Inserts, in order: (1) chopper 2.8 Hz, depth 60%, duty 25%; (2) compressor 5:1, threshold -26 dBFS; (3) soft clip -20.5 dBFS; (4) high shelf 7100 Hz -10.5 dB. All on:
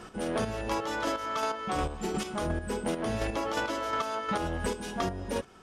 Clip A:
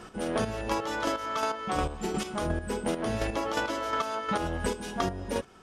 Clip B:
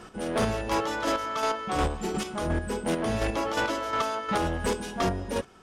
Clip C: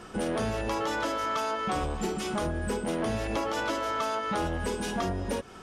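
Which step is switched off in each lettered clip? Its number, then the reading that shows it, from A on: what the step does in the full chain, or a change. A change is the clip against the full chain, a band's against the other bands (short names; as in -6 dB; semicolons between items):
3, distortion -19 dB; 2, mean gain reduction 4.0 dB; 1, crest factor change -2.0 dB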